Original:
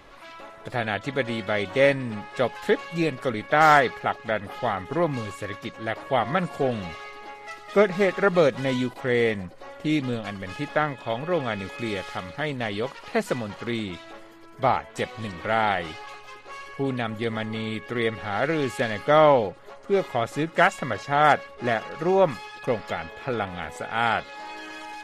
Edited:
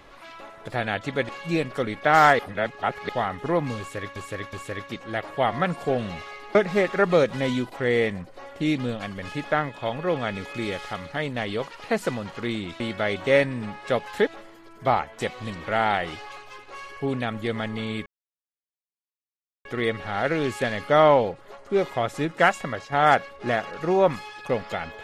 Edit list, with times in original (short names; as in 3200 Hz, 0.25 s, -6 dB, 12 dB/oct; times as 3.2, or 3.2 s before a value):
1.29–2.76 move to 14.04
3.86–4.56 reverse
5.26–5.63 loop, 3 plays
7.28–7.79 cut
17.83 insert silence 1.59 s
20.74–21.1 fade out, to -6 dB